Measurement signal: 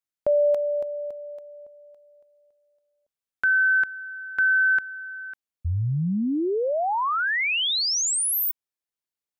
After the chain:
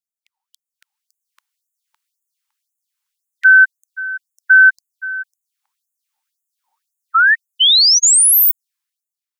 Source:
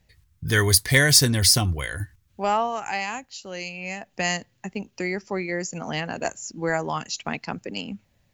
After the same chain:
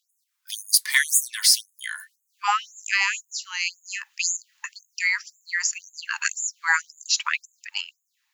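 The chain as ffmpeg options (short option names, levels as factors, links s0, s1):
-af "dynaudnorm=f=200:g=9:m=5.01,afftfilt=real='re*gte(b*sr/1024,810*pow(6600/810,0.5+0.5*sin(2*PI*1.9*pts/sr)))':imag='im*gte(b*sr/1024,810*pow(6600/810,0.5+0.5*sin(2*PI*1.9*pts/sr)))':win_size=1024:overlap=0.75"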